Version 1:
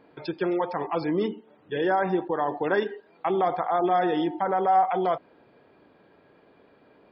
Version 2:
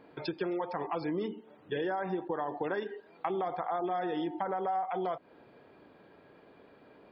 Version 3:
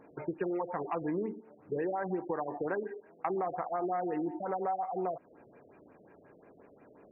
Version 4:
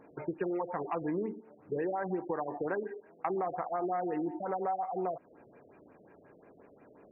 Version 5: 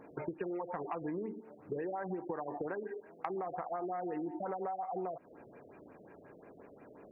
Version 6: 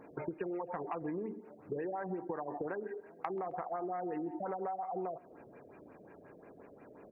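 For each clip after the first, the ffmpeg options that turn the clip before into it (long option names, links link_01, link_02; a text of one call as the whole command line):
ffmpeg -i in.wav -af "acompressor=threshold=-31dB:ratio=5" out.wav
ffmpeg -i in.wav -af "afftfilt=real='re*lt(b*sr/1024,660*pow(2900/660,0.5+0.5*sin(2*PI*5.6*pts/sr)))':imag='im*lt(b*sr/1024,660*pow(2900/660,0.5+0.5*sin(2*PI*5.6*pts/sr)))':win_size=1024:overlap=0.75" out.wav
ffmpeg -i in.wav -af anull out.wav
ffmpeg -i in.wav -af "acompressor=threshold=-38dB:ratio=6,volume=2.5dB" out.wav
ffmpeg -i in.wav -af "aecho=1:1:133|266|399:0.0668|0.0307|0.0141" out.wav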